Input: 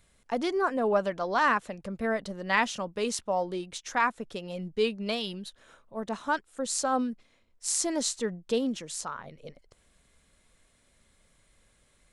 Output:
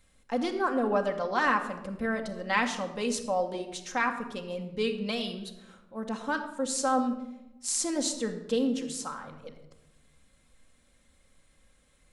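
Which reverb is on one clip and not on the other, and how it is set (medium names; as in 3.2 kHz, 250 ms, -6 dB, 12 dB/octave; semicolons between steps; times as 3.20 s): simulated room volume 3800 m³, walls furnished, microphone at 2.1 m; trim -2 dB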